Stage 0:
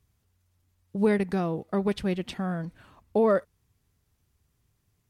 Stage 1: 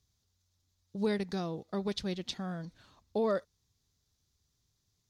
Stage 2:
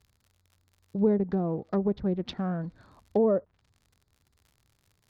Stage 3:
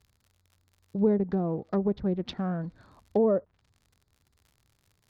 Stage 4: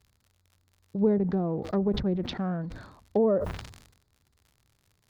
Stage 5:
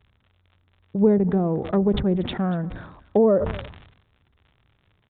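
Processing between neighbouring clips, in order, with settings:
flat-topped bell 4,900 Hz +12.5 dB 1.2 octaves; level −8 dB
adaptive Wiener filter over 15 samples; surface crackle 85 per second −56 dBFS; treble cut that deepens with the level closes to 640 Hz, closed at −30 dBFS; level +8 dB
no processing that can be heard
level that may fall only so fast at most 68 dB per second
downsampling to 8,000 Hz; single-tap delay 237 ms −20 dB; level +6 dB

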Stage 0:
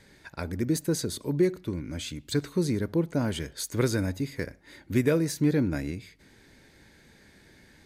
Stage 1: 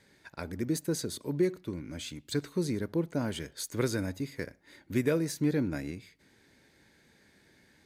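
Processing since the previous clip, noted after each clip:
high-pass filter 110 Hz 6 dB per octave
in parallel at −9 dB: dead-zone distortion −49 dBFS
on the sum: level −6 dB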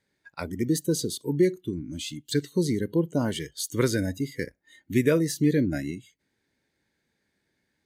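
noise reduction from a noise print of the clip's start 19 dB
level +6 dB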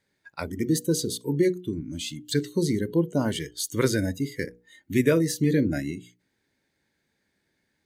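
mains-hum notches 60/120/180/240/300/360/420/480 Hz
level +1.5 dB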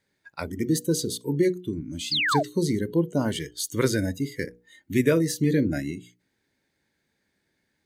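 sound drawn into the spectrogram fall, 0:02.11–0:02.43, 560–5,200 Hz −24 dBFS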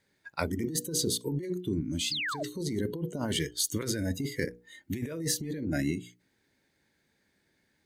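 compressor whose output falls as the input rises −29 dBFS, ratio −1
level −2.5 dB

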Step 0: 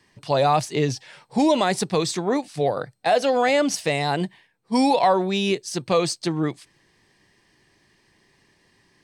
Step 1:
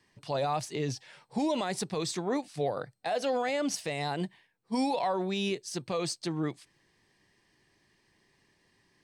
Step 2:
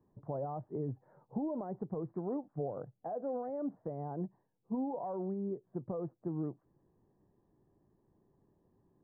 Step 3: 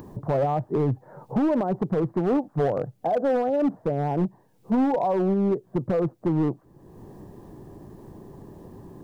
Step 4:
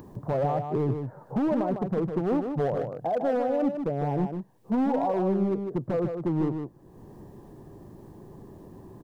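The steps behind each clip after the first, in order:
brickwall limiter −14 dBFS, peak gain reduction 6 dB; level −7.5 dB
downward compressor 2.5 to 1, threshold −37 dBFS, peak gain reduction 8 dB; Gaussian smoothing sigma 10 samples; level +2 dB
in parallel at +3 dB: upward compression, threshold −41 dBFS; on the sum: hard clipping −26 dBFS, distortion −15 dB; level +8 dB
single-tap delay 153 ms −6.5 dB; level −3.5 dB

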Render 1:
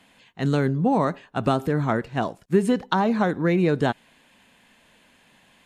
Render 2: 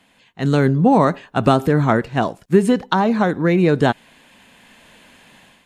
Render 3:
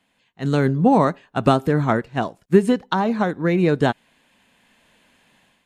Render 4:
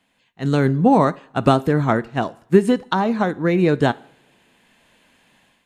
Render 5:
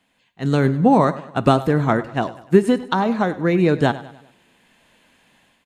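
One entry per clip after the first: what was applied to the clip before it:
automatic gain control gain up to 9.5 dB
expander for the loud parts 1.5 to 1, over −29 dBFS
coupled-rooms reverb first 0.58 s, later 3 s, from −26 dB, DRR 18.5 dB; level +1 dB
repeating echo 99 ms, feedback 46%, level −16.5 dB

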